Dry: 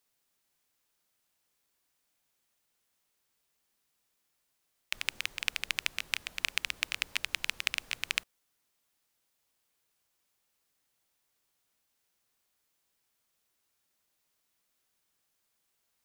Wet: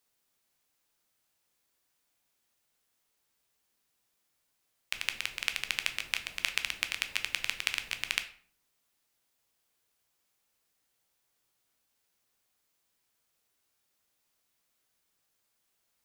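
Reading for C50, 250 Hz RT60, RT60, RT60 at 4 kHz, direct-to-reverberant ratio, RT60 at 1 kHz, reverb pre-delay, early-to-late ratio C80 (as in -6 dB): 13.5 dB, 0.65 s, 0.55 s, 0.35 s, 7.5 dB, 0.50 s, 9 ms, 17.5 dB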